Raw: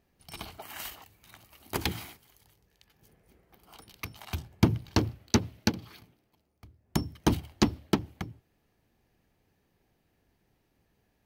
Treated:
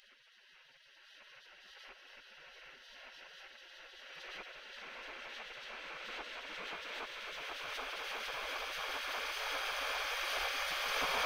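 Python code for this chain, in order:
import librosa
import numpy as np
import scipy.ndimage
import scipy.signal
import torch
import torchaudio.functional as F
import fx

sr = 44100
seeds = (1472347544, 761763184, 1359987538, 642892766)

p1 = fx.env_lowpass(x, sr, base_hz=890.0, full_db=-22.5)
p2 = fx.paulstretch(p1, sr, seeds[0], factor=14.0, window_s=1.0, from_s=3.72)
p3 = fx.spec_gate(p2, sr, threshold_db=-25, keep='weak')
p4 = p3 + fx.echo_single(p3, sr, ms=769, db=-12.5, dry=0)
p5 = fx.pre_swell(p4, sr, db_per_s=21.0)
y = p5 * librosa.db_to_amplitude(10.5)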